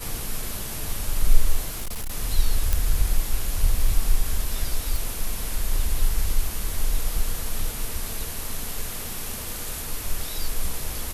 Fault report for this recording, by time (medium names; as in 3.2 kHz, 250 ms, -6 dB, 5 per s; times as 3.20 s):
1.68–2.12 s: clipped -25.5 dBFS
2.73 s: pop -7 dBFS
4.96 s: pop